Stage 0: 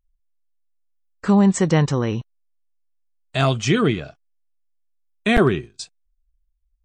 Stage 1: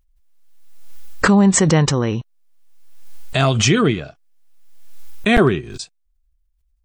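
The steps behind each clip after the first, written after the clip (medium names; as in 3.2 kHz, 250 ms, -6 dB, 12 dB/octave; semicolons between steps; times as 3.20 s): swell ahead of each attack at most 39 dB/s; trim +2 dB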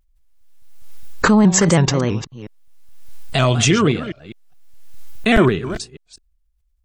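chunks repeated in reverse 206 ms, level -12.5 dB; vibrato with a chosen wave square 3.1 Hz, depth 100 cents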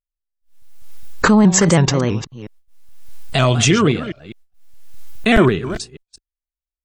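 gate -43 dBFS, range -30 dB; trim +1 dB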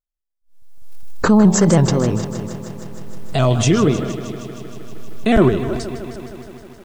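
FFT filter 670 Hz 0 dB, 2.2 kHz -9 dB, 5 kHz -5 dB; bit-crushed delay 156 ms, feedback 80%, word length 7-bit, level -13 dB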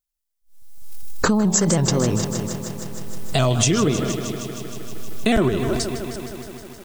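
treble shelf 3.8 kHz +11 dB; compression 10:1, threshold -14 dBFS, peak gain reduction 8.5 dB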